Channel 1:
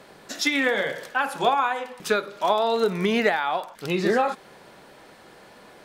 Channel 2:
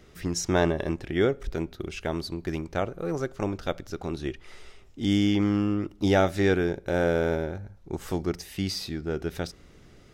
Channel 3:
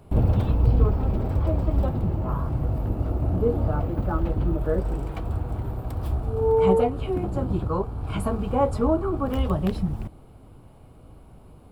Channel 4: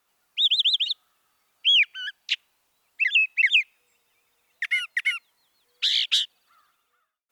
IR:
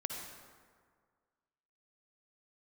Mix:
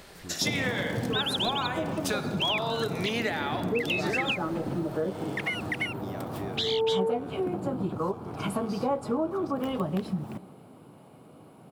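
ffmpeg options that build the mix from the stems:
-filter_complex "[0:a]highshelf=f=2500:g=10,volume=0.422,asplit=2[s0][s1];[s1]volume=0.473[s2];[1:a]alimiter=limit=0.1:level=0:latency=1,acompressor=mode=upward:threshold=0.0224:ratio=2.5,volume=0.237[s3];[2:a]highpass=f=150:w=0.5412,highpass=f=150:w=1.3066,adelay=300,volume=1.12,asplit=2[s4][s5];[s5]volume=0.133[s6];[3:a]adelay=750,volume=0.668[s7];[4:a]atrim=start_sample=2205[s8];[s2][s6]amix=inputs=2:normalize=0[s9];[s9][s8]afir=irnorm=-1:irlink=0[s10];[s0][s3][s4][s7][s10]amix=inputs=5:normalize=0,acompressor=threshold=0.0398:ratio=2.5"

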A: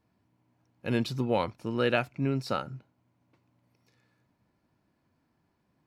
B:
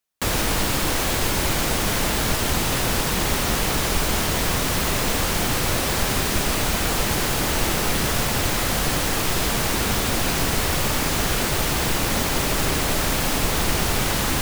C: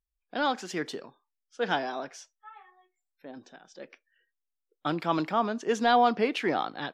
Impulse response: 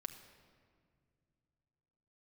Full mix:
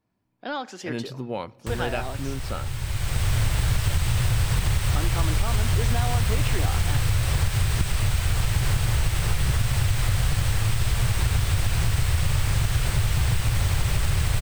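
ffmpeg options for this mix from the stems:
-filter_complex "[0:a]volume=0.562,asplit=3[s0][s1][s2];[s1]volume=0.266[s3];[1:a]lowshelf=f=160:t=q:w=3:g=13.5,acrossover=split=1400|4500[s4][s5][s6];[s4]acompressor=threshold=0.141:ratio=4[s7];[s5]acompressor=threshold=0.0251:ratio=4[s8];[s6]acompressor=threshold=0.0141:ratio=4[s9];[s7][s8][s9]amix=inputs=3:normalize=0,equalizer=f=8300:w=7.3:g=9.5,adelay=1450,volume=0.891,asplit=2[s10][s11];[s11]volume=0.178[s12];[2:a]acompressor=threshold=0.0562:ratio=6,adelay=100,volume=0.794,asplit=2[s13][s14];[s14]volume=0.282[s15];[s2]apad=whole_len=699450[s16];[s10][s16]sidechaincompress=threshold=0.00631:ratio=8:attack=11:release=698[s17];[3:a]atrim=start_sample=2205[s18];[s3][s12][s15]amix=inputs=3:normalize=0[s19];[s19][s18]afir=irnorm=-1:irlink=0[s20];[s0][s17][s13][s20]amix=inputs=4:normalize=0,acompressor=threshold=0.141:ratio=6"

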